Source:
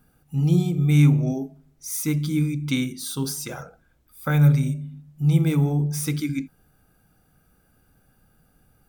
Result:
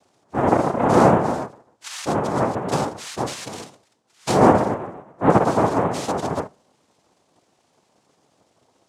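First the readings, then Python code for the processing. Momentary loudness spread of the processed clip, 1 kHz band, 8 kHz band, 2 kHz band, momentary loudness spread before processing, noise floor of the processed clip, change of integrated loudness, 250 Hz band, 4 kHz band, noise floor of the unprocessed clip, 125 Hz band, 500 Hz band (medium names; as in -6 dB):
19 LU, +21.0 dB, -2.0 dB, +4.5 dB, 15 LU, -66 dBFS, +2.0 dB, +0.5 dB, +1.5 dB, -63 dBFS, -8.0 dB, +14.5 dB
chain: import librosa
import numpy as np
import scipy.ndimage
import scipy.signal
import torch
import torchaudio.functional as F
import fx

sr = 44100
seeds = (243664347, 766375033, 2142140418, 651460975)

y = fx.hum_notches(x, sr, base_hz=60, count=8)
y = fx.dynamic_eq(y, sr, hz=2900.0, q=0.95, threshold_db=-46.0, ratio=4.0, max_db=-5)
y = fx.noise_vocoder(y, sr, seeds[0], bands=2)
y = y * 10.0 ** (2.0 / 20.0)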